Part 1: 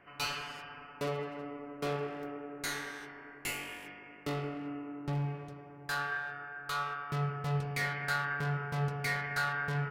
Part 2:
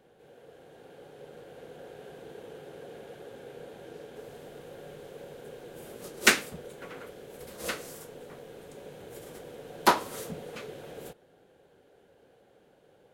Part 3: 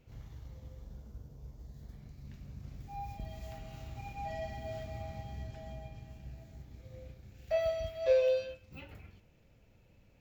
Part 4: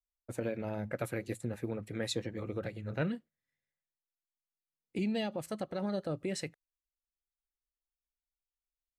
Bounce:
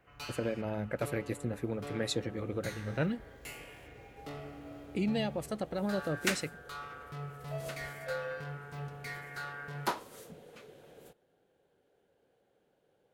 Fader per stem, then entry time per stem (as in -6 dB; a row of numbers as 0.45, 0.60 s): -9.0, -11.5, -12.5, +1.5 dB; 0.00, 0.00, 0.00, 0.00 s